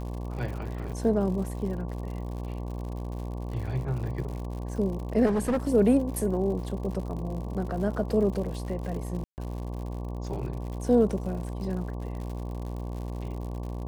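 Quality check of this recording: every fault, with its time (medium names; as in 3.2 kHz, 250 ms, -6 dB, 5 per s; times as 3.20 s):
buzz 60 Hz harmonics 19 -34 dBFS
crackle 110 per s -37 dBFS
0.92 s: dropout 4.6 ms
5.25–5.57 s: clipped -22 dBFS
9.24–9.38 s: dropout 139 ms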